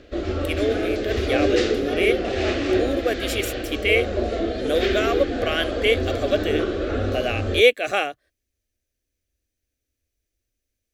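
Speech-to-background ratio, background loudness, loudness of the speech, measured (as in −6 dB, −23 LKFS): 0.5 dB, −24.5 LKFS, −24.0 LKFS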